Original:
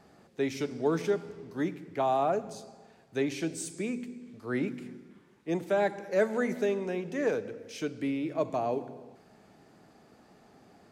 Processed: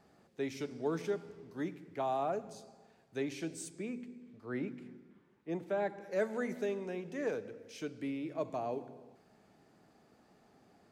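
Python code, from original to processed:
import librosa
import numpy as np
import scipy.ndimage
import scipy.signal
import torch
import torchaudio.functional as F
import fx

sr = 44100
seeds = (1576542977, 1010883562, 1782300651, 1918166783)

y = fx.high_shelf(x, sr, hz=fx.line((3.68, 5700.0), (6.0, 4000.0)), db=-11.5, at=(3.68, 6.0), fade=0.02)
y = y * librosa.db_to_amplitude(-7.0)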